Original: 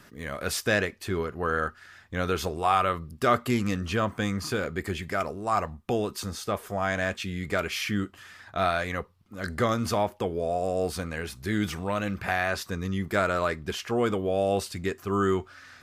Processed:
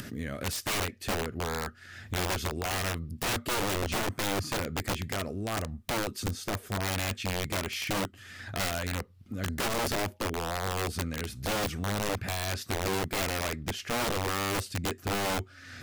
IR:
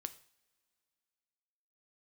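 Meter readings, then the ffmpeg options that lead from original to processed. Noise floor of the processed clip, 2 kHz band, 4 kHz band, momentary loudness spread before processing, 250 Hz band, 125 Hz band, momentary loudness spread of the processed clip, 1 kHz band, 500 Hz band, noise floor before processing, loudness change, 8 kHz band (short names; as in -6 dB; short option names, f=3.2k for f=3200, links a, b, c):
-53 dBFS, -3.5 dB, +2.5 dB, 8 LU, -5.5 dB, -1.5 dB, 6 LU, -5.5 dB, -6.5 dB, -54 dBFS, -3.5 dB, +4.0 dB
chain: -af "equalizer=f=100:t=o:w=0.67:g=10,equalizer=f=250:t=o:w=0.67:g=7,equalizer=f=1k:t=o:w=0.67:g=-10,acompressor=mode=upward:threshold=-25dB:ratio=2.5,aeval=exprs='(mod(10*val(0)+1,2)-1)/10':c=same,volume=-4.5dB"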